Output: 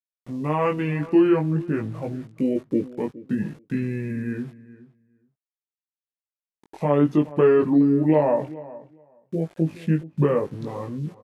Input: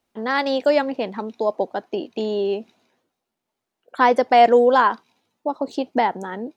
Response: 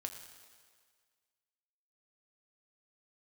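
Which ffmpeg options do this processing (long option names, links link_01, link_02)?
-filter_complex "[0:a]equalizer=frequency=250:width=0.61:gain=4,aeval=exprs='val(0)*gte(abs(val(0)),0.00891)':channel_layout=same,alimiter=limit=-6.5dB:level=0:latency=1:release=107,asetrate=25798,aresample=44100,flanger=delay=18.5:depth=2.4:speed=0.52,asplit=2[link_01][link_02];[link_02]adelay=419,lowpass=frequency=2000:poles=1,volume=-18dB,asplit=2[link_03][link_04];[link_04]adelay=419,lowpass=frequency=2000:poles=1,volume=0.15[link_05];[link_01][link_03][link_05]amix=inputs=3:normalize=0,adynamicequalizer=threshold=0.00398:dfrequency=3400:dqfactor=0.7:tfrequency=3400:tqfactor=0.7:attack=5:release=100:ratio=0.375:range=2.5:mode=cutabove:tftype=highshelf"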